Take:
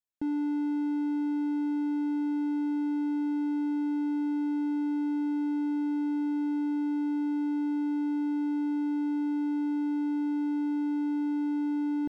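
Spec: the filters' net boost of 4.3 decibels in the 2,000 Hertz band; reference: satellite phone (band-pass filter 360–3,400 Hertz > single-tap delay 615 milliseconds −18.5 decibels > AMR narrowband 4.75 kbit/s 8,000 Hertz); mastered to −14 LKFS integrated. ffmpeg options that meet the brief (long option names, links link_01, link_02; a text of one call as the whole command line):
ffmpeg -i in.wav -af "highpass=360,lowpass=3400,equalizer=frequency=2000:width_type=o:gain=7,aecho=1:1:615:0.119,volume=20dB" -ar 8000 -c:a libopencore_amrnb -b:a 4750 out.amr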